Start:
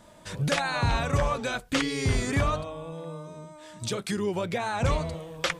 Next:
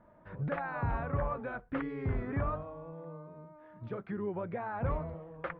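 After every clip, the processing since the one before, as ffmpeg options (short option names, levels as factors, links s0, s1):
-af "lowpass=f=1700:w=0.5412,lowpass=f=1700:w=1.3066,volume=0.422"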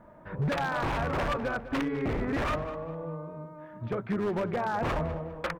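-filter_complex "[0:a]aeval=exprs='0.0266*(abs(mod(val(0)/0.0266+3,4)-2)-1)':c=same,bandreject=f=50:t=h:w=6,bandreject=f=100:t=h:w=6,asplit=2[s0][s1];[s1]adelay=202,lowpass=f=3200:p=1,volume=0.237,asplit=2[s2][s3];[s3]adelay=202,lowpass=f=3200:p=1,volume=0.37,asplit=2[s4][s5];[s5]adelay=202,lowpass=f=3200:p=1,volume=0.37,asplit=2[s6][s7];[s7]adelay=202,lowpass=f=3200:p=1,volume=0.37[s8];[s0][s2][s4][s6][s8]amix=inputs=5:normalize=0,volume=2.51"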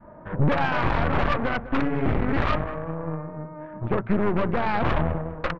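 -af "lowpass=1600,aeval=exprs='0.0944*(cos(1*acos(clip(val(0)/0.0944,-1,1)))-cos(1*PI/2))+0.0237*(cos(4*acos(clip(val(0)/0.0944,-1,1)))-cos(4*PI/2))':c=same,adynamicequalizer=threshold=0.00631:dfrequency=490:dqfactor=0.71:tfrequency=490:tqfactor=0.71:attack=5:release=100:ratio=0.375:range=2.5:mode=cutabove:tftype=bell,volume=2.37"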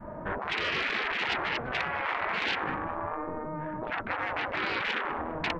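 -af "afftfilt=real='re*lt(hypot(re,im),0.0891)':imag='im*lt(hypot(re,im),0.0891)':win_size=1024:overlap=0.75,areverse,acompressor=mode=upward:threshold=0.00631:ratio=2.5,areverse,volume=1.88"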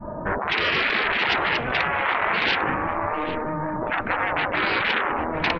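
-filter_complex "[0:a]asplit=2[s0][s1];[s1]adelay=798,lowpass=f=3800:p=1,volume=0.266,asplit=2[s2][s3];[s3]adelay=798,lowpass=f=3800:p=1,volume=0.27,asplit=2[s4][s5];[s5]adelay=798,lowpass=f=3800:p=1,volume=0.27[s6];[s0][s2][s4][s6]amix=inputs=4:normalize=0,afftdn=nr=15:nf=-49,volume=2.51"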